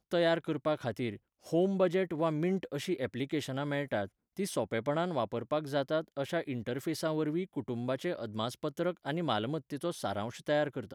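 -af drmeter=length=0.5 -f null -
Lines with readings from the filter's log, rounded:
Channel 1: DR: 10.6
Overall DR: 10.6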